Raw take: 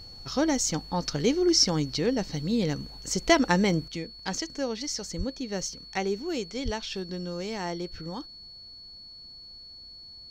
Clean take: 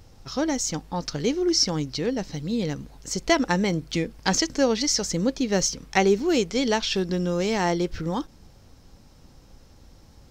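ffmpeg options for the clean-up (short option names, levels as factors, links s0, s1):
-filter_complex "[0:a]bandreject=f=4400:w=30,asplit=3[s0][s1][s2];[s0]afade=t=out:st=5.17:d=0.02[s3];[s1]highpass=f=140:w=0.5412,highpass=f=140:w=1.3066,afade=t=in:st=5.17:d=0.02,afade=t=out:st=5.29:d=0.02[s4];[s2]afade=t=in:st=5.29:d=0.02[s5];[s3][s4][s5]amix=inputs=3:normalize=0,asplit=3[s6][s7][s8];[s6]afade=t=out:st=6.64:d=0.02[s9];[s7]highpass=f=140:w=0.5412,highpass=f=140:w=1.3066,afade=t=in:st=6.64:d=0.02,afade=t=out:st=6.76:d=0.02[s10];[s8]afade=t=in:st=6.76:d=0.02[s11];[s9][s10][s11]amix=inputs=3:normalize=0,asetnsamples=n=441:p=0,asendcmd='3.88 volume volume 9.5dB',volume=1"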